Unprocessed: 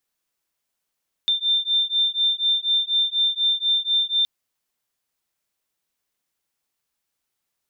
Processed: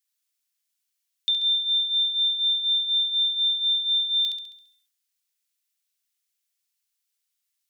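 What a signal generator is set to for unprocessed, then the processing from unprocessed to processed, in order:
beating tones 3580 Hz, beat 4.1 Hz, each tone -21.5 dBFS 2.97 s
Bessel high-pass 3000 Hz, order 2; flutter echo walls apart 11.6 m, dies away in 0.65 s; sustainer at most 84 dB/s

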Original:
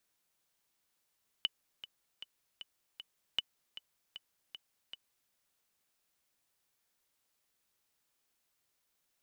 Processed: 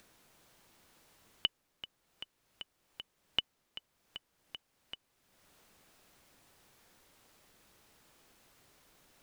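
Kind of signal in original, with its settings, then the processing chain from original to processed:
metronome 155 bpm, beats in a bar 5, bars 2, 2980 Hz, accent 15 dB -17 dBFS
tilt -2.5 dB/oct; in parallel at +2 dB: upward compressor, threshold -52 dBFS; on the sum: low shelf 110 Hz -8.5 dB

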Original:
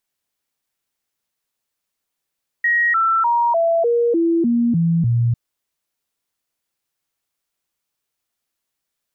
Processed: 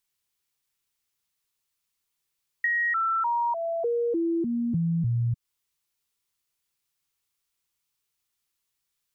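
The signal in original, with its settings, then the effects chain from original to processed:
stepped sine 1890 Hz down, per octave 2, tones 9, 0.30 s, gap 0.00 s -13.5 dBFS
fifteen-band EQ 250 Hz -9 dB, 630 Hz -12 dB, 1600 Hz -4 dB; compressor, threshold -24 dBFS

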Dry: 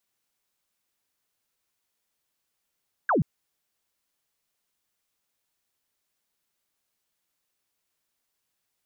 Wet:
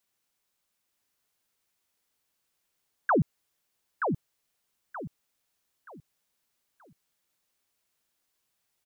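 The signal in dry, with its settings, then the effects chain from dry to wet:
laser zap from 1700 Hz, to 120 Hz, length 0.13 s sine, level -19 dB
feedback echo 0.927 s, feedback 31%, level -5 dB

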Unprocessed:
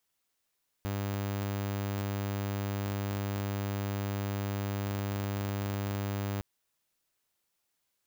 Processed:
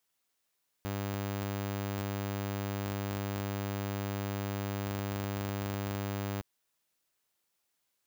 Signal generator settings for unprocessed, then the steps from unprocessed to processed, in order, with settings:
tone saw 100 Hz -28.5 dBFS 5.56 s
low shelf 99 Hz -6 dB

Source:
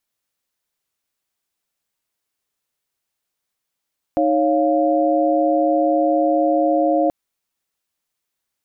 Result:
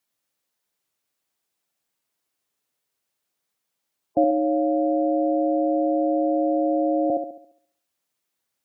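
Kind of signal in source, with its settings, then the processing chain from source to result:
chord D#4/C#5/F5 sine, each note -18.5 dBFS 2.93 s
spectral gate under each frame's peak -15 dB strong; HPF 79 Hz; on a send: band-limited delay 69 ms, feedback 45%, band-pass 420 Hz, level -3 dB

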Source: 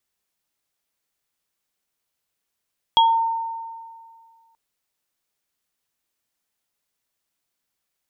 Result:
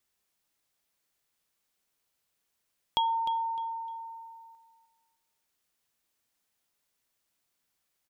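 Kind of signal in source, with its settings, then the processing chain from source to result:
sine partials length 1.58 s, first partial 911 Hz, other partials 3300 Hz, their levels -1 dB, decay 2.01 s, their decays 0.24 s, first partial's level -11 dB
compressor 1.5:1, threshold -45 dBFS; on a send: feedback echo 0.304 s, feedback 28%, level -12 dB

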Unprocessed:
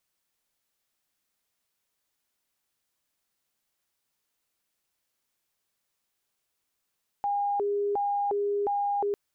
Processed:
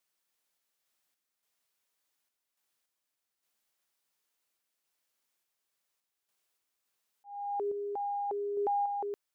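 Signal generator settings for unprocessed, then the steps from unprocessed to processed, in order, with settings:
siren hi-lo 407–811 Hz 1.4/s sine -24.5 dBFS 1.90 s
low shelf 180 Hz -11 dB; auto swell 0.536 s; random-step tremolo

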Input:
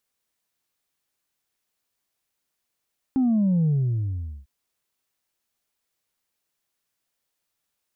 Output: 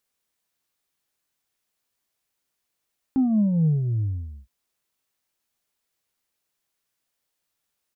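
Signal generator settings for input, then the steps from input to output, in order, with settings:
sub drop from 270 Hz, over 1.30 s, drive 1 dB, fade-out 0.80 s, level -18 dB
doubler 19 ms -13 dB

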